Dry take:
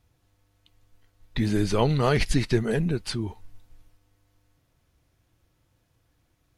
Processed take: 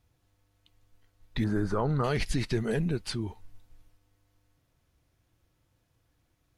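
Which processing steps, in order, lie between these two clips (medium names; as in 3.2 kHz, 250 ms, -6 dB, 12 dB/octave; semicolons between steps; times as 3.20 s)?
1.44–2.04 s: resonant high shelf 1.9 kHz -10.5 dB, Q 3; peak limiter -15.5 dBFS, peak gain reduction 6.5 dB; trim -3.5 dB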